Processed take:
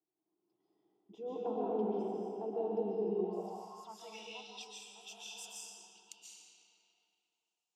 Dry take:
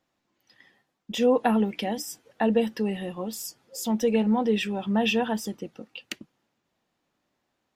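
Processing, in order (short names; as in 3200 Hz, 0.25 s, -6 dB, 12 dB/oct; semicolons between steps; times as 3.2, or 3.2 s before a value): fixed phaser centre 360 Hz, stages 8; digital reverb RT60 3 s, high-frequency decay 0.7×, pre-delay 0.1 s, DRR -7 dB; band-pass sweep 370 Hz -> 7500 Hz, 3.17–4.84; gain -6 dB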